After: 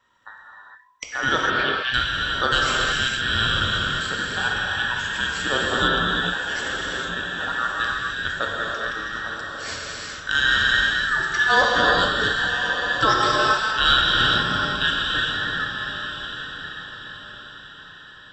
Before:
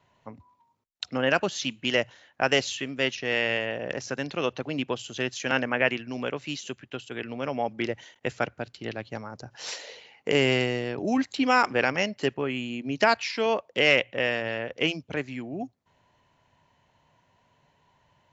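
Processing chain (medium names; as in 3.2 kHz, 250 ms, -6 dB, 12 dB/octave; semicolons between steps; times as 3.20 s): every band turned upside down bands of 2 kHz; 1.18–1.94 s: Chebyshev low-pass 4.2 kHz, order 4; on a send: echo that smears into a reverb 1111 ms, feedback 40%, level -9 dB; on the sum: gated-style reverb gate 480 ms flat, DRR -3.5 dB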